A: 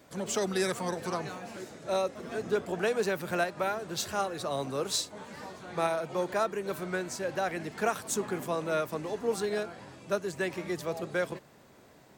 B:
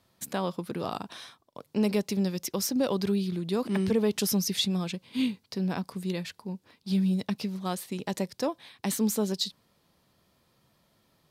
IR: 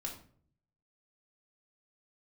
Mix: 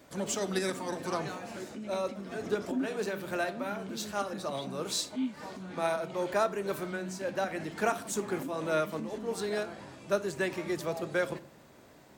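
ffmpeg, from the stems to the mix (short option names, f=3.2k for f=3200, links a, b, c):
-filter_complex "[0:a]volume=-1.5dB,asplit=2[a][b];[b]volume=-7.5dB[c];[1:a]alimiter=limit=-21dB:level=0:latency=1,asplit=3[d][e][f];[d]bandpass=f=270:t=q:w=8,volume=0dB[g];[e]bandpass=f=2.29k:t=q:w=8,volume=-6dB[h];[f]bandpass=f=3.01k:t=q:w=8,volume=-9dB[i];[g][h][i]amix=inputs=3:normalize=0,volume=-1dB,asplit=2[j][k];[k]apad=whole_len=536938[l];[a][l]sidechaincompress=threshold=-50dB:ratio=8:attack=12:release=124[m];[2:a]atrim=start_sample=2205[n];[c][n]afir=irnorm=-1:irlink=0[o];[m][j][o]amix=inputs=3:normalize=0"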